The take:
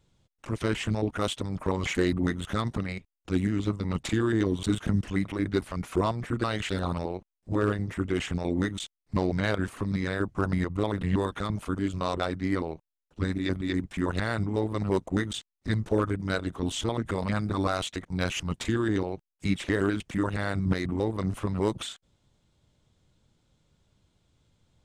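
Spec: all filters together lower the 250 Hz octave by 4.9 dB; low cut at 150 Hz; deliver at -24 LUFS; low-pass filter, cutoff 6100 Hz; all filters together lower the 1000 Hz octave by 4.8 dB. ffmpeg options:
-af "highpass=150,lowpass=6.1k,equalizer=f=250:t=o:g=-5.5,equalizer=f=1k:t=o:g=-6,volume=10dB"

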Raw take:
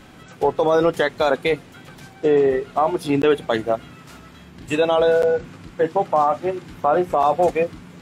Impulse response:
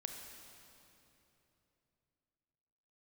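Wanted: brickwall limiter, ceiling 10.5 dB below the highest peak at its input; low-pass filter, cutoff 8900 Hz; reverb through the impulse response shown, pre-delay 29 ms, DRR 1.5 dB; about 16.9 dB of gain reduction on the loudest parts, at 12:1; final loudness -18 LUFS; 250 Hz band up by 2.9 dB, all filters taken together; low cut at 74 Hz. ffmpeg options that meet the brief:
-filter_complex "[0:a]highpass=74,lowpass=8.9k,equalizer=f=250:t=o:g=4,acompressor=threshold=-29dB:ratio=12,alimiter=level_in=1.5dB:limit=-24dB:level=0:latency=1,volume=-1.5dB,asplit=2[a][b];[1:a]atrim=start_sample=2205,adelay=29[c];[b][c]afir=irnorm=-1:irlink=0,volume=0.5dB[d];[a][d]amix=inputs=2:normalize=0,volume=16.5dB"

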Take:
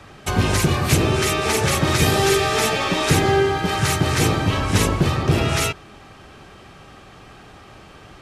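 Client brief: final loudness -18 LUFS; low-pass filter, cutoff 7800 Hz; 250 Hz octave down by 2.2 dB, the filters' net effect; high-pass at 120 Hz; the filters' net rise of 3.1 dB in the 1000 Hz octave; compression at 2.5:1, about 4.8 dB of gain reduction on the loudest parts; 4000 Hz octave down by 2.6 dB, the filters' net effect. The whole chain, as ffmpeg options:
-af "highpass=120,lowpass=7.8k,equalizer=f=250:t=o:g=-3,equalizer=f=1k:t=o:g=4.5,equalizer=f=4k:t=o:g=-3.5,acompressor=threshold=-21dB:ratio=2.5,volume=5.5dB"

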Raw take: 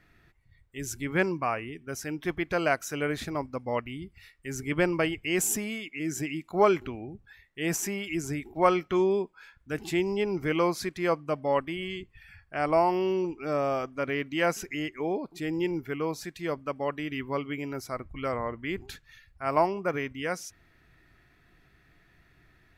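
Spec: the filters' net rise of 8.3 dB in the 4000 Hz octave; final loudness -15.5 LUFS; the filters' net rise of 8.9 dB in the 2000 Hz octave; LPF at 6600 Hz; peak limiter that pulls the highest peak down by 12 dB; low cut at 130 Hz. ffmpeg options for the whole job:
-af "highpass=130,lowpass=6.6k,equalizer=f=2k:t=o:g=8.5,equalizer=f=4k:t=o:g=8.5,volume=14.5dB,alimiter=limit=-2.5dB:level=0:latency=1"

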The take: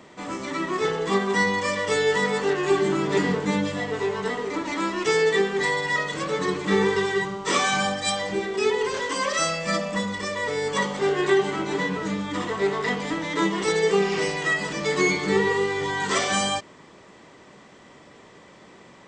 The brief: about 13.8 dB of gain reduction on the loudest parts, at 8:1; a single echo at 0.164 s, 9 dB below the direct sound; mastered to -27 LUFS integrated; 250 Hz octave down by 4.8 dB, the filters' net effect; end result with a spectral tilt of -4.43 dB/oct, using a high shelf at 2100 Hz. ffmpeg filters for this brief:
-af "equalizer=f=250:t=o:g=-7.5,highshelf=f=2.1k:g=-8,acompressor=threshold=-34dB:ratio=8,aecho=1:1:164:0.355,volume=9.5dB"

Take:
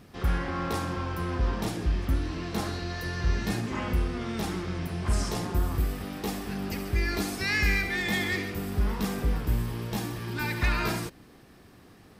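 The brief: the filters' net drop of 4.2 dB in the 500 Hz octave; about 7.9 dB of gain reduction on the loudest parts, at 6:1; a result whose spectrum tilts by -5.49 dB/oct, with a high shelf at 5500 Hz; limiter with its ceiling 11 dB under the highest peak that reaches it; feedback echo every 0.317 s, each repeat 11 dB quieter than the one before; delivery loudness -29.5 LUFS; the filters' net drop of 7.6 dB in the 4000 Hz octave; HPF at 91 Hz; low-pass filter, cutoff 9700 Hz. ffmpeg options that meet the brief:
-af "highpass=91,lowpass=9.7k,equalizer=f=500:t=o:g=-6,equalizer=f=4k:t=o:g=-6,highshelf=f=5.5k:g=-8.5,acompressor=threshold=-35dB:ratio=6,alimiter=level_in=12.5dB:limit=-24dB:level=0:latency=1,volume=-12.5dB,aecho=1:1:317|634|951:0.282|0.0789|0.0221,volume=15dB"

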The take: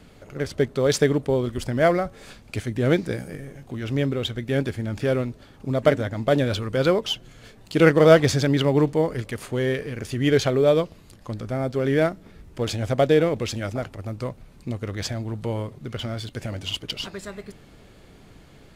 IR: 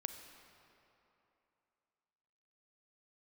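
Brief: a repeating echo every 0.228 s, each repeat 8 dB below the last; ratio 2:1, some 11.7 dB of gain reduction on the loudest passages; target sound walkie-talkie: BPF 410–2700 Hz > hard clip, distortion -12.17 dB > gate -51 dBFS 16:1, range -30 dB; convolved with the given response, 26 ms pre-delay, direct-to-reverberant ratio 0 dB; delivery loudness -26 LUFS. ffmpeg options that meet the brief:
-filter_complex "[0:a]acompressor=threshold=-31dB:ratio=2,aecho=1:1:228|456|684|912|1140:0.398|0.159|0.0637|0.0255|0.0102,asplit=2[a][b];[1:a]atrim=start_sample=2205,adelay=26[c];[b][c]afir=irnorm=-1:irlink=0,volume=1.5dB[d];[a][d]amix=inputs=2:normalize=0,highpass=410,lowpass=2.7k,asoftclip=type=hard:threshold=-24dB,agate=range=-30dB:threshold=-51dB:ratio=16,volume=6.5dB"

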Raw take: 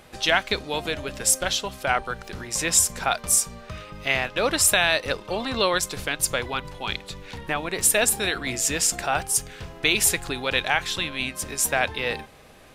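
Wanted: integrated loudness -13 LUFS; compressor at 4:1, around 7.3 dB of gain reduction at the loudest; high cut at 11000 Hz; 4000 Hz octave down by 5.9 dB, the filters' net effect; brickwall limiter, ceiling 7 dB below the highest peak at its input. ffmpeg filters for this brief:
-af "lowpass=11k,equalizer=f=4k:t=o:g=-7.5,acompressor=threshold=-26dB:ratio=4,volume=19dB,alimiter=limit=-0.5dB:level=0:latency=1"

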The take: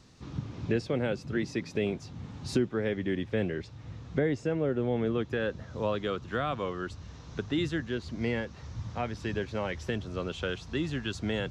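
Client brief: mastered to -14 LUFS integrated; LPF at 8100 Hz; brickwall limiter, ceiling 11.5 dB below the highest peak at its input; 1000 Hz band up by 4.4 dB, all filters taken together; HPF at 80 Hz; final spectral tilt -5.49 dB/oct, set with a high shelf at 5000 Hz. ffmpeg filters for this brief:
-af "highpass=80,lowpass=8.1k,equalizer=f=1k:t=o:g=6.5,highshelf=f=5k:g=-7.5,volume=22.5dB,alimiter=limit=-2.5dB:level=0:latency=1"

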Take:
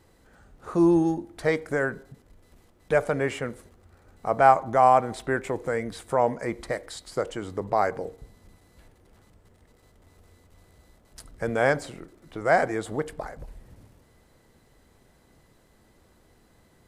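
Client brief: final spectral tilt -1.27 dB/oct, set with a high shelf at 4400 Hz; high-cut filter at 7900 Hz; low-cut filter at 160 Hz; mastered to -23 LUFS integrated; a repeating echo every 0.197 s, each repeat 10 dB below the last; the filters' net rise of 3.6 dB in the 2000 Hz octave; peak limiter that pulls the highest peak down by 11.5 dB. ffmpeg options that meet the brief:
-af "highpass=160,lowpass=7.9k,equalizer=f=2k:t=o:g=5.5,highshelf=f=4.4k:g=-3.5,alimiter=limit=-14.5dB:level=0:latency=1,aecho=1:1:197|394|591|788:0.316|0.101|0.0324|0.0104,volume=5.5dB"

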